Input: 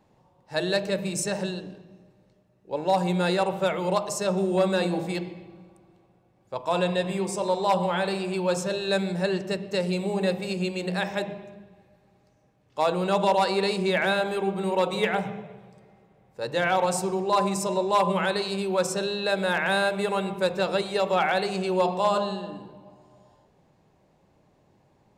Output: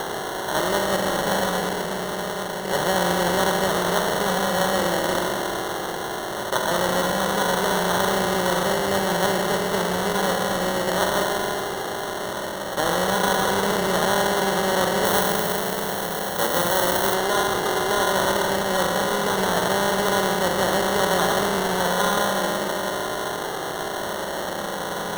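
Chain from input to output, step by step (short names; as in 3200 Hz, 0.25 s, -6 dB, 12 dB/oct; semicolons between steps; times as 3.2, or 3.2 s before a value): per-bin compression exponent 0.2; flange 0.17 Hz, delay 2.5 ms, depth 3.1 ms, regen -42%; sample-and-hold 18×; 15.05–17.14 high shelf 11000 Hz +11.5 dB; gain -3 dB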